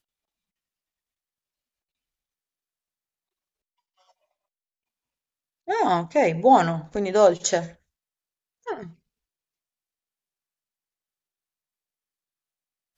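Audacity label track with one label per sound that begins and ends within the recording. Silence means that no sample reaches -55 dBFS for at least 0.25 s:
4.000000	4.110000	sound
5.670000	7.760000	sound
8.640000	8.960000	sound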